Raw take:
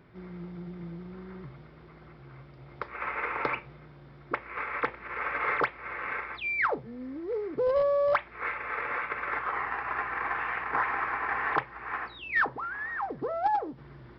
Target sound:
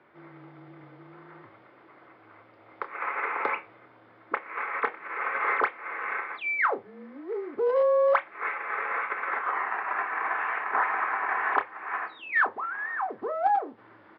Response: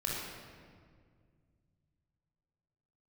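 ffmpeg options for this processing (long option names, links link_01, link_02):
-filter_complex "[0:a]highpass=480,lowpass=2500,asplit=2[link_01][link_02];[link_02]adelay=28,volume=-10.5dB[link_03];[link_01][link_03]amix=inputs=2:normalize=0,afreqshift=-28,volume=3dB"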